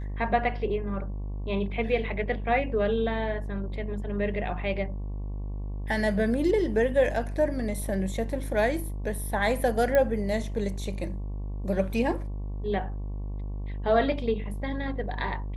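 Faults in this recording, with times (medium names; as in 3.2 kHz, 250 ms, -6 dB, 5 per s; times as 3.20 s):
buzz 50 Hz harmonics 23 -33 dBFS
9.95 s: pop -13 dBFS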